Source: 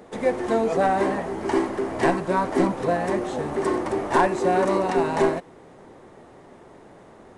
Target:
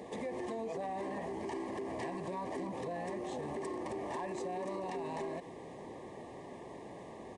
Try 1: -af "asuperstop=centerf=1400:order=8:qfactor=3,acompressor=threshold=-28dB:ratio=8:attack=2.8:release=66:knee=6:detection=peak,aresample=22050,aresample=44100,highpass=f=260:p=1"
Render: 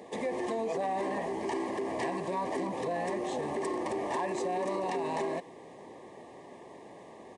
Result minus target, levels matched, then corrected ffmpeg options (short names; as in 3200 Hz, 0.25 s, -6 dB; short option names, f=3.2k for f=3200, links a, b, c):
compressor: peak gain reduction -8 dB; 125 Hz band -5.0 dB
-af "asuperstop=centerf=1400:order=8:qfactor=3,acompressor=threshold=-37dB:ratio=8:attack=2.8:release=66:knee=6:detection=peak,aresample=22050,aresample=44100,highpass=f=69:p=1"